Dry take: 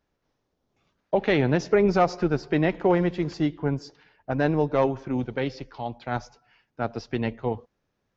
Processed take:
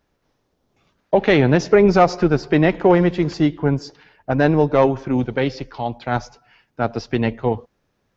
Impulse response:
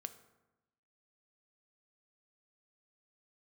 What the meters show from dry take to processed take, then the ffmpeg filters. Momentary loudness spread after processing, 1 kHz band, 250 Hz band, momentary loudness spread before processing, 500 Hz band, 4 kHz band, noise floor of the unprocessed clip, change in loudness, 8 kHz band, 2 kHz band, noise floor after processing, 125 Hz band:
11 LU, +7.0 dB, +7.5 dB, 11 LU, +7.5 dB, +7.5 dB, -77 dBFS, +7.0 dB, n/a, +7.0 dB, -70 dBFS, +7.5 dB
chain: -af "aeval=exprs='0.376*(cos(1*acos(clip(val(0)/0.376,-1,1)))-cos(1*PI/2))+0.00596*(cos(5*acos(clip(val(0)/0.376,-1,1)))-cos(5*PI/2))':c=same,volume=7dB"

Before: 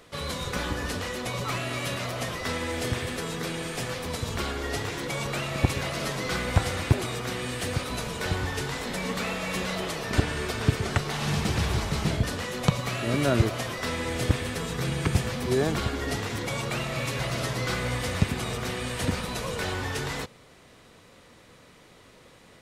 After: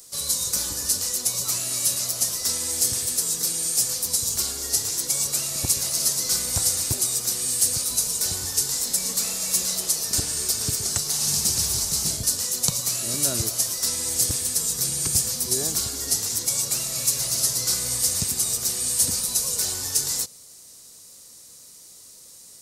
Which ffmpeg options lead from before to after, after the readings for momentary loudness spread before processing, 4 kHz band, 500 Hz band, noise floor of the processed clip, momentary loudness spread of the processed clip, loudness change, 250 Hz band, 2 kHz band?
5 LU, +7.0 dB, -8.5 dB, -47 dBFS, 3 LU, +7.0 dB, -8.5 dB, -9.5 dB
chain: -af "aexciter=amount=12.2:drive=3.8:freq=4.9k,highshelf=f=2.7k:t=q:w=1.5:g=6,volume=-8.5dB"

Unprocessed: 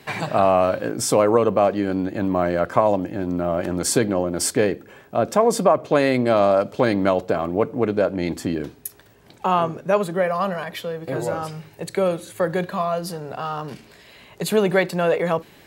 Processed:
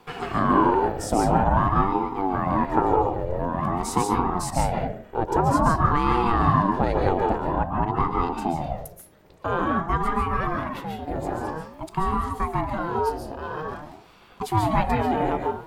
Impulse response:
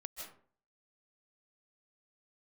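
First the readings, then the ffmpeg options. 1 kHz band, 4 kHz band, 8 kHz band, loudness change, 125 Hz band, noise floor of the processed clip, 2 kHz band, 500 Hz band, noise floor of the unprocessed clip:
+2.5 dB, -7.5 dB, -9.5 dB, -2.5 dB, +2.5 dB, -50 dBFS, -3.5 dB, -8.0 dB, -50 dBFS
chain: -filter_complex "[0:a]tiltshelf=f=880:g=4.5[a];[1:a]atrim=start_sample=2205,asetrate=48510,aresample=44100[b];[a][b]afir=irnorm=-1:irlink=0,aeval=exprs='val(0)*sin(2*PI*410*n/s+410*0.5/0.49*sin(2*PI*0.49*n/s))':c=same,volume=2.5dB"

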